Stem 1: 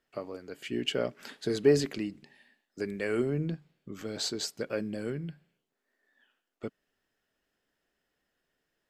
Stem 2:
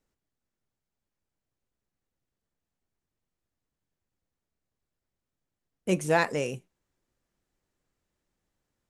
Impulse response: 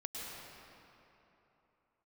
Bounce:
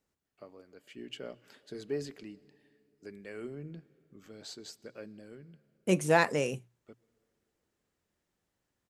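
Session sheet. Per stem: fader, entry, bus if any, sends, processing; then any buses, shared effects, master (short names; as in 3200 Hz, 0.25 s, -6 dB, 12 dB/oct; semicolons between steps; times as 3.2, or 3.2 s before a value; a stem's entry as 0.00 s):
-13.0 dB, 0.25 s, send -21 dB, auto duck -7 dB, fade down 0.90 s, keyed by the second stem
-0.5 dB, 0.00 s, no send, HPF 48 Hz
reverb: on, RT60 3.3 s, pre-delay 97 ms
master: notches 60/120 Hz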